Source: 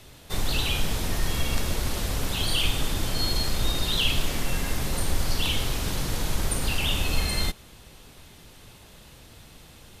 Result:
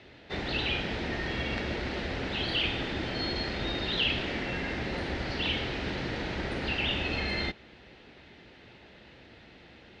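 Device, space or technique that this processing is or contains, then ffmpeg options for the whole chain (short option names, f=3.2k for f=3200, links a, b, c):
guitar cabinet: -af "highpass=87,equalizer=f=97:t=q:w=4:g=-8,equalizer=f=150:t=q:w=4:g=-7,equalizer=f=350:t=q:w=4:g=3,equalizer=f=1.1k:t=q:w=4:g=-8,equalizer=f=1.9k:t=q:w=4:g=5,equalizer=f=3.4k:t=q:w=4:g=-4,lowpass=f=3.8k:w=0.5412,lowpass=f=3.8k:w=1.3066"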